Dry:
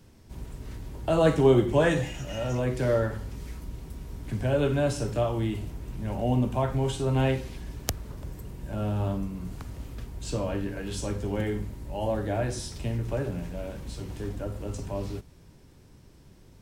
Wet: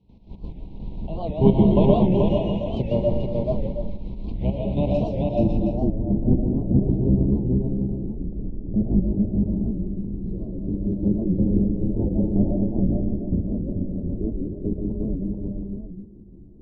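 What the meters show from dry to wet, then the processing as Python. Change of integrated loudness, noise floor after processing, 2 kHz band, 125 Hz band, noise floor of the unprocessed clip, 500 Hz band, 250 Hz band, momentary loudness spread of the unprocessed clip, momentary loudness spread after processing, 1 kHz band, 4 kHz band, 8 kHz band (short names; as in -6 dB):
+5.0 dB, -43 dBFS, under -15 dB, +5.5 dB, -54 dBFS, +1.5 dB, +10.0 dB, 17 LU, 14 LU, -1.0 dB, n/a, under -25 dB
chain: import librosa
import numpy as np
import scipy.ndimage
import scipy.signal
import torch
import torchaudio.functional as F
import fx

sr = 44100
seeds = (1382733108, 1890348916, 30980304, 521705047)

p1 = fx.octave_divider(x, sr, octaves=1, level_db=4.0)
p2 = fx.high_shelf(p1, sr, hz=5800.0, db=-4.5)
p3 = fx.step_gate(p2, sr, bpm=170, pattern='.x.x.x...x.x...', floor_db=-12.0, edge_ms=4.5)
p4 = scipy.signal.sosfilt(scipy.signal.cheby1(3, 1.0, [960.0, 2500.0], 'bandstop', fs=sr, output='sos'), p3)
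p5 = fx.filter_sweep_lowpass(p4, sr, from_hz=2200.0, to_hz=350.0, start_s=4.93, end_s=5.48, q=2.2)
p6 = fx.graphic_eq_31(p5, sr, hz=(200, 2500, 4000, 8000), db=(10, -9, 11, -7))
p7 = p6 + fx.echo_multitap(p6, sr, ms=(233, 433, 720), db=(-11.0, -3.0, -9.0), dry=0)
p8 = fx.rev_freeverb(p7, sr, rt60_s=0.52, hf_ratio=0.5, predelay_ms=85, drr_db=0.5)
y = fx.record_warp(p8, sr, rpm=78.0, depth_cents=160.0)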